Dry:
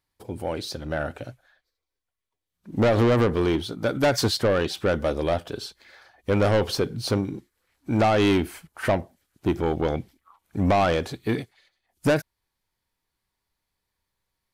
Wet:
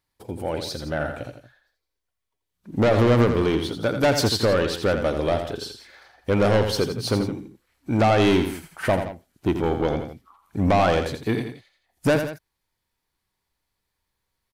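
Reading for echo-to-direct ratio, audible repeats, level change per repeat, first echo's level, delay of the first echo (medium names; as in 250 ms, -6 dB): -7.0 dB, 2, -6.0 dB, -8.0 dB, 84 ms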